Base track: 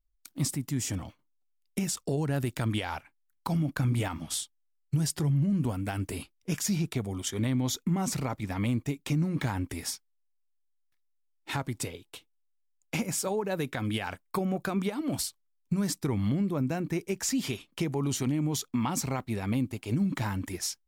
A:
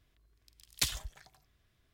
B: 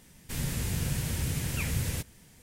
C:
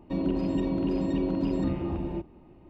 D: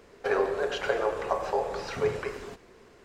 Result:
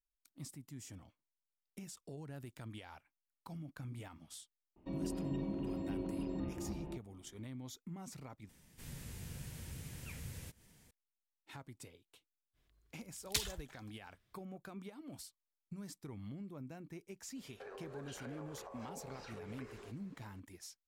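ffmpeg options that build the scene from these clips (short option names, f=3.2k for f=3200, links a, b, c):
-filter_complex "[0:a]volume=-19dB[a];[2:a]acompressor=mode=upward:threshold=-38dB:ratio=2.5:attack=3.2:release=140:knee=2.83:detection=peak[b];[4:a]acompressor=threshold=-35dB:ratio=6:attack=3.2:release=140:knee=1:detection=peak[c];[a]asplit=2[d][e];[d]atrim=end=8.494[f];[b]atrim=end=2.42,asetpts=PTS-STARTPTS,volume=-16.5dB[g];[e]atrim=start=10.906[h];[3:a]atrim=end=2.69,asetpts=PTS-STARTPTS,volume=-12.5dB,afade=t=in:d=0.004:c=hsin,afade=t=out:st=2.686:d=0.004:c=hsin,adelay=4760[i];[1:a]atrim=end=1.93,asetpts=PTS-STARTPTS,volume=-4.5dB,afade=t=in:d=0.05,afade=t=out:st=1.88:d=0.05,adelay=12530[j];[c]atrim=end=3.04,asetpts=PTS-STARTPTS,volume=-12.5dB,afade=t=in:d=0.004:c=hsin,afade=t=out:st=3.036:d=0.004:c=hsin,adelay=17360[k];[f][g]acrossfade=d=0.004:c1=hsin:c2=hsin[l];[l][h]acrossfade=d=0.004:c1=hsin:c2=hsin[m];[m][i][j][k]amix=inputs=4:normalize=0"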